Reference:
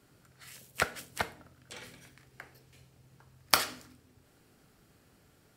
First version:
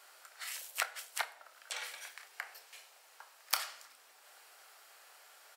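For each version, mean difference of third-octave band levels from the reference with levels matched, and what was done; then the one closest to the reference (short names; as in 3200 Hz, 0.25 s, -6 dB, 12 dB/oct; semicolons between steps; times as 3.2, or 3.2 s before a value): 14.0 dB: inverse Chebyshev high-pass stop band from 150 Hz, stop band 70 dB; compressor 2.5:1, threshold -48 dBFS, peak gain reduction 19.5 dB; doubler 28 ms -13.5 dB; gain +9.5 dB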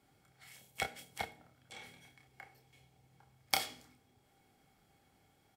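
2.0 dB: dynamic EQ 1200 Hz, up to -7 dB, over -47 dBFS, Q 1; doubler 29 ms -6.5 dB; small resonant body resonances 790/2200/3300 Hz, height 14 dB, ringing for 45 ms; gain -8.5 dB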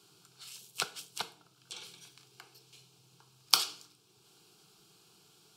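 5.5 dB: fixed phaser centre 380 Hz, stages 8; in parallel at +1 dB: compressor, threshold -60 dBFS, peak gain reduction 35.5 dB; on the sum: weighting filter D; gain -5 dB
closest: second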